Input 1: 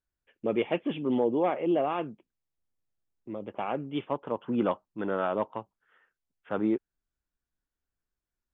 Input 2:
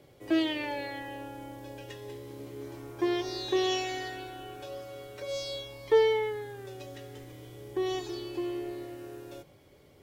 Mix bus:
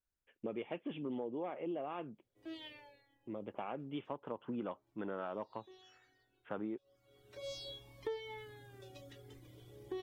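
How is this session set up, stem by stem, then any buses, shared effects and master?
-5.0 dB, 0.00 s, no send, none
-9.0 dB, 2.15 s, no send, bass shelf 190 Hz +5 dB; reverb removal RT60 1 s; peaking EQ 3.5 kHz +4.5 dB 0.36 oct; auto duck -23 dB, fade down 0.60 s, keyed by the first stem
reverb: none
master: compression 5:1, threshold -38 dBFS, peak gain reduction 11 dB

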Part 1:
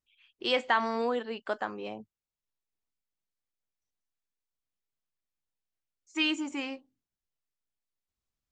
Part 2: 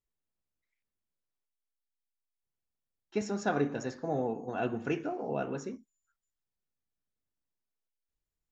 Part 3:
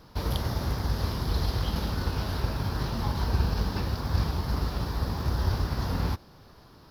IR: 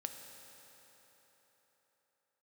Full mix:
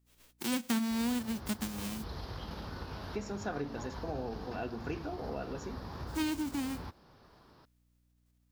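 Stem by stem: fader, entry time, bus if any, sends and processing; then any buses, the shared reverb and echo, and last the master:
+2.0 dB, 0.00 s, no send, formants flattened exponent 0.1; peaking EQ 220 Hz +15 dB 1.2 oct
+2.0 dB, 0.00 s, no send, hum 60 Hz, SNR 35 dB
-4.5 dB, 0.75 s, no send, low-pass 3.5 kHz 6 dB/octave; bass shelf 180 Hz -8 dB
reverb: none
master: compression 2:1, threshold -41 dBFS, peak gain reduction 15.5 dB

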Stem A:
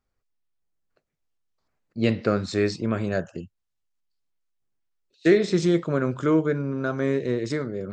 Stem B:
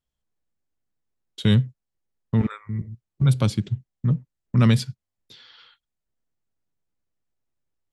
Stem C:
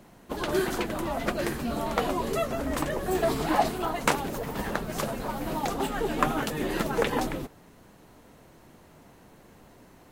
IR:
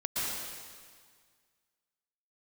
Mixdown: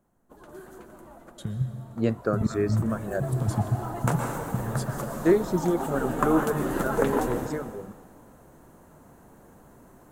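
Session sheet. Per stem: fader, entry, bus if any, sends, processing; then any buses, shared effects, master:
-2.0 dB, 0.00 s, no send, reverb removal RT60 1.9 s
-10.0 dB, 0.00 s, send -16 dB, compressor with a negative ratio -22 dBFS, ratio -0.5; tone controls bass +8 dB, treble +3 dB
2.05 s -20 dB -> 2.68 s -9 dB -> 3.67 s -9 dB -> 4.03 s -1.5 dB, 0.00 s, send -10.5 dB, auto duck -7 dB, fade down 0.25 s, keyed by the second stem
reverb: on, RT60 1.8 s, pre-delay 108 ms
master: high-order bell 3.3 kHz -10.5 dB

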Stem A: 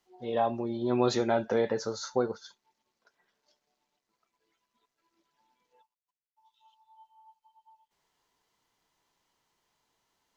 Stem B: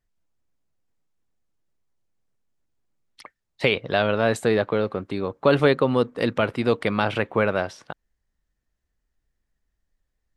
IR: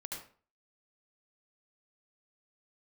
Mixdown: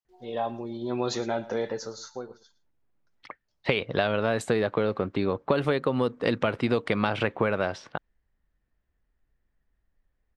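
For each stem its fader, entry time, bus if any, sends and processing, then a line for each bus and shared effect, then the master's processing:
1.76 s -2.5 dB -> 2.53 s -15.5 dB, 0.00 s, no send, echo send -18 dB, treble shelf 3.2 kHz +5.5 dB; gate with hold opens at -59 dBFS
+2.5 dB, 0.05 s, no send, no echo send, level-controlled noise filter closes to 2.5 kHz, open at -15.5 dBFS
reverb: none
echo: delay 112 ms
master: compression 12:1, threshold -20 dBFS, peak gain reduction 11 dB

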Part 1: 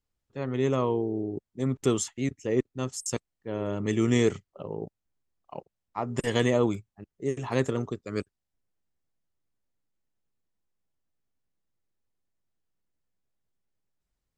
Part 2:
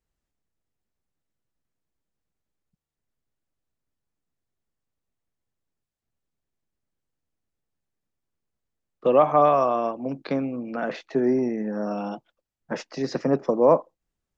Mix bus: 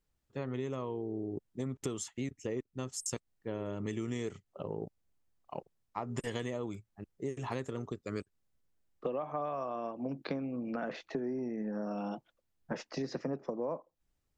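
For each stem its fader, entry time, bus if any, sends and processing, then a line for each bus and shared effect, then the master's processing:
-1.0 dB, 0.00 s, no send, none
-3.5 dB, 0.00 s, no send, bass shelf 190 Hz +5.5 dB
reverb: none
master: compression 10:1, threshold -33 dBFS, peak gain reduction 18 dB

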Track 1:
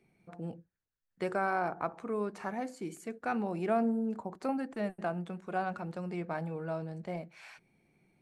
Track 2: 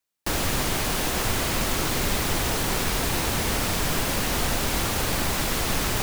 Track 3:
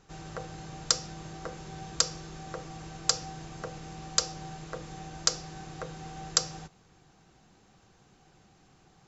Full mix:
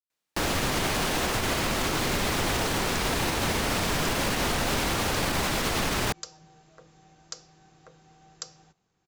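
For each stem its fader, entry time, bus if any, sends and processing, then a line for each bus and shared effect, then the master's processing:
-18.5 dB, 0.00 s, no send, expander on every frequency bin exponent 3
+3.0 dB, 0.10 s, no send, treble shelf 8.6 kHz -10 dB
-13.5 dB, 2.05 s, no send, none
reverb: none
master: bass shelf 90 Hz -6.5 dB; peak limiter -17 dBFS, peak gain reduction 7 dB

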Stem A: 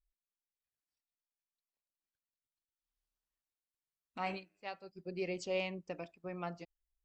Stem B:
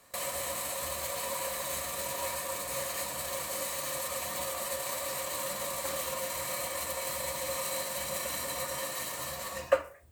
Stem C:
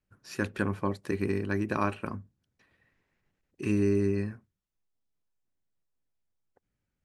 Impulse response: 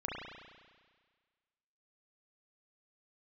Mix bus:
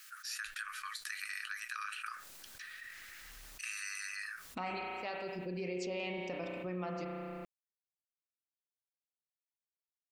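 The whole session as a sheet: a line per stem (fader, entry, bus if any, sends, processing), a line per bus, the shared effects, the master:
+0.5 dB, 0.40 s, bus A, send -8.5 dB, none
mute
-1.0 dB, 0.00 s, bus A, no send, rippled Chebyshev high-pass 1.2 kHz, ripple 3 dB; treble shelf 6 kHz +8.5 dB; flange 1.3 Hz, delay 7.9 ms, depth 1.8 ms, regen -59%
bus A: 0.0 dB, compression, threshold -46 dBFS, peak gain reduction 14.5 dB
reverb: on, RT60 1.6 s, pre-delay 33 ms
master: level flattener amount 70%

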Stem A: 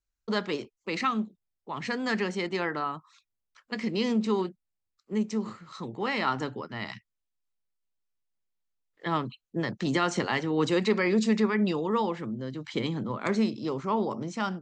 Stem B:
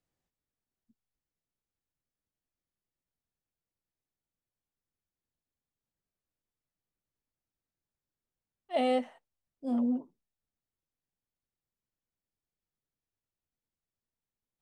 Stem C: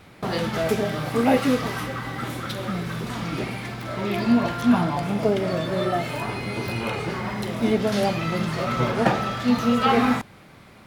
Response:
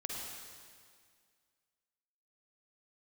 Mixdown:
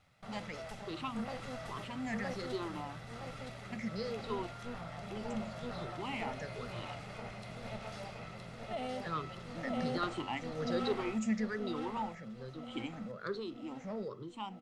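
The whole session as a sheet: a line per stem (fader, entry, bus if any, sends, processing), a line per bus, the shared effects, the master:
-16.0 dB, 0.00 s, no bus, no send, no echo send, drifting ripple filter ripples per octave 0.61, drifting -1.2 Hz, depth 21 dB
0.0 dB, 0.00 s, bus A, no send, echo send -12 dB, none
-18.5 dB, 0.00 s, bus A, no send, echo send -3.5 dB, comb filter that takes the minimum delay 1.5 ms; low-pass 10 kHz 24 dB/octave; auto duck -8 dB, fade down 0.90 s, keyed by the second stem
bus A: 0.0 dB, peaking EQ 380 Hz -7.5 dB 0.77 oct; compression 4:1, threshold -39 dBFS, peak gain reduction 11 dB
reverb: none
echo: feedback delay 967 ms, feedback 56%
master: none

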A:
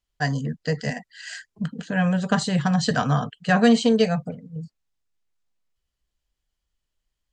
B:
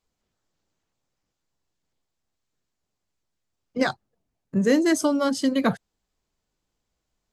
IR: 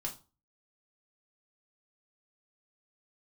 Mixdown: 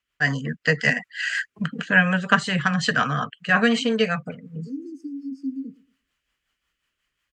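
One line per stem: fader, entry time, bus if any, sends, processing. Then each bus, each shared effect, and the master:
+2.5 dB, 0.00 s, no send, no echo send, high-order bell 1.8 kHz +11 dB
-7.5 dB, 0.00 s, no send, echo send -18.5 dB, FFT band-reject 510–4400 Hz; vowel filter i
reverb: none
echo: feedback delay 114 ms, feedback 22%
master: high-pass 160 Hz 6 dB/octave; level rider gain up to 4 dB; rotary cabinet horn 5.5 Hz

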